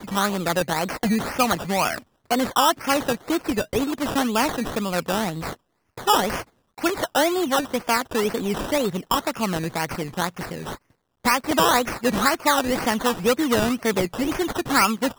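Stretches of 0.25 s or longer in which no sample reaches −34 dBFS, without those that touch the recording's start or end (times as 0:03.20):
0:01.99–0:02.31
0:05.54–0:05.98
0:06.42–0:06.78
0:10.75–0:11.25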